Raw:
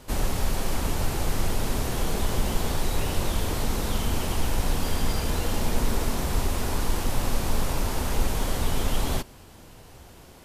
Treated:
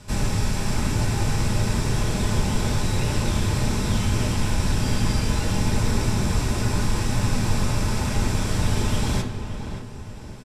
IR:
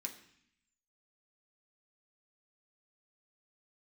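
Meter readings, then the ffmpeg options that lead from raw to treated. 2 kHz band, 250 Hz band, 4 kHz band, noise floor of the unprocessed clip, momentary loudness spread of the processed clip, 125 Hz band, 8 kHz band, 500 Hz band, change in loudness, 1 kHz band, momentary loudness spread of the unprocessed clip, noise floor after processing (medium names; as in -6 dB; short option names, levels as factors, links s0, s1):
+4.0 dB, +6.0 dB, +2.5 dB, -48 dBFS, 2 LU, +7.5 dB, +2.5 dB, +1.0 dB, +4.5 dB, +1.5 dB, 1 LU, -35 dBFS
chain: -filter_complex "[0:a]lowpass=8900,equalizer=f=110:w=2.6:g=8.5,asplit=2[s0][s1];[s1]adelay=573,lowpass=f=2200:p=1,volume=0.376,asplit=2[s2][s3];[s3]adelay=573,lowpass=f=2200:p=1,volume=0.43,asplit=2[s4][s5];[s5]adelay=573,lowpass=f=2200:p=1,volume=0.43,asplit=2[s6][s7];[s7]adelay=573,lowpass=f=2200:p=1,volume=0.43,asplit=2[s8][s9];[s9]adelay=573,lowpass=f=2200:p=1,volume=0.43[s10];[s0][s2][s4][s6][s8][s10]amix=inputs=6:normalize=0[s11];[1:a]atrim=start_sample=2205[s12];[s11][s12]afir=irnorm=-1:irlink=0,volume=1.78"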